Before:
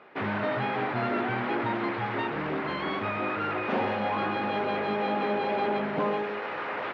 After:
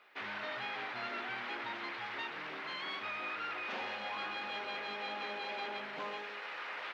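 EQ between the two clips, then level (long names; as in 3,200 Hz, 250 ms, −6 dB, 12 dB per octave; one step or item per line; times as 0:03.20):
first difference
low-shelf EQ 240 Hz +6 dB
+5.0 dB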